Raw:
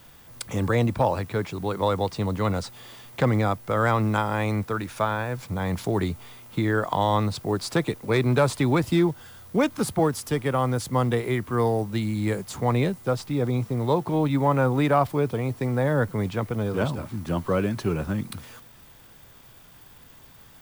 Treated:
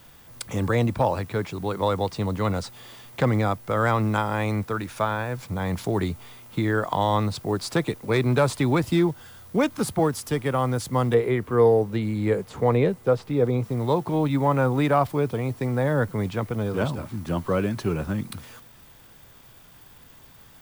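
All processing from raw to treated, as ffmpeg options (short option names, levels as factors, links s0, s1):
-filter_complex "[0:a]asettb=1/sr,asplit=3[s0][s1][s2];[s0]atrim=end=11.144[s3];[s1]atrim=start=11.14:end=13.64,asetpts=PTS-STARTPTS,afade=t=in:d=0.004:c=qsin,afade=t=out:st=2.496:d=0.004:c=qsin,acrossover=split=3300[s4][s5];[s5]acompressor=threshold=0.00355:ratio=4:attack=1:release=60[s6];[s4][s6]amix=inputs=2:normalize=0,equalizer=f=460:w=3.4:g=8.5[s7];[s2]atrim=start=13.636[s8];[s3][s7]acrossfade=d=0.004:c1=hsin:c2=qsin[s9];[s9][s8]acrossfade=d=0.004:c1=qsin:c2=hsin"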